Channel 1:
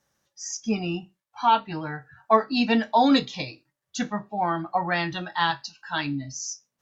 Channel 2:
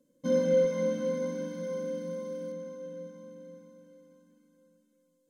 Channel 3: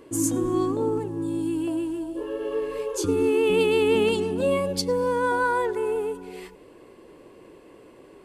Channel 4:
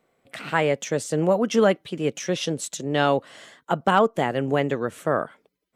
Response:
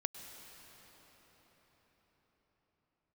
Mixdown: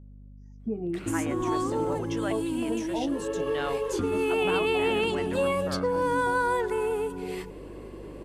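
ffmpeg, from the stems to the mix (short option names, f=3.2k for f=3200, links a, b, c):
-filter_complex "[0:a]acompressor=threshold=-30dB:ratio=1.5,lowpass=f=400:t=q:w=3.4,volume=1dB[a];[1:a]adelay=1350,volume=-12.5dB[b];[2:a]lowshelf=f=430:g=7,adelay=950,volume=2.5dB[c];[3:a]adelay=600,volume=-9.5dB[d];[a][b][c][d]amix=inputs=4:normalize=0,acrossover=split=760|3000[e][f][g];[e]acompressor=threshold=-30dB:ratio=4[h];[f]acompressor=threshold=-26dB:ratio=4[i];[g]acompressor=threshold=-43dB:ratio=4[j];[h][i][j]amix=inputs=3:normalize=0,aeval=exprs='val(0)+0.00501*(sin(2*PI*50*n/s)+sin(2*PI*2*50*n/s)/2+sin(2*PI*3*50*n/s)/3+sin(2*PI*4*50*n/s)/4+sin(2*PI*5*50*n/s)/5)':c=same"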